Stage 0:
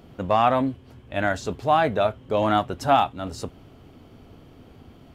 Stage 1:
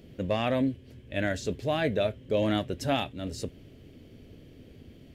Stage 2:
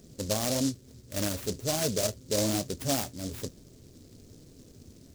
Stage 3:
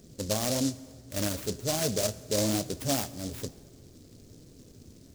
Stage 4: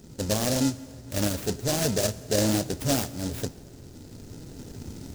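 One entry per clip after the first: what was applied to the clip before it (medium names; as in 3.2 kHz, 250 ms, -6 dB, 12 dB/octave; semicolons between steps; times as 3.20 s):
high-order bell 1 kHz -13.5 dB 1.2 oct; trim -2 dB
flange 1.1 Hz, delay 4.2 ms, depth 7.8 ms, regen -62%; delay time shaken by noise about 5.6 kHz, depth 0.18 ms; trim +2.5 dB
plate-style reverb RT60 1.9 s, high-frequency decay 0.75×, DRR 16 dB
recorder AGC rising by 5.1 dB/s; in parallel at -7.5 dB: sample-and-hold 39×; on the sum: trim +2 dB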